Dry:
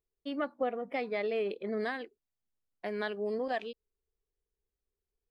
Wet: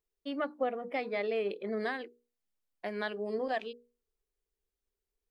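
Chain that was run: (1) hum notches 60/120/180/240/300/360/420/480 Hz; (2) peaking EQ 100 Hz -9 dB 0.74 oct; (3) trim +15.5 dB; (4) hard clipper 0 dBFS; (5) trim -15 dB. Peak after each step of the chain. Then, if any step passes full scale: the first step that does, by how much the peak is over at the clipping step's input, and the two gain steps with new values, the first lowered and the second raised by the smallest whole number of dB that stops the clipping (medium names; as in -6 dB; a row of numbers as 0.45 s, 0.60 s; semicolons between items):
-21.0 dBFS, -21.0 dBFS, -5.5 dBFS, -5.5 dBFS, -20.5 dBFS; nothing clips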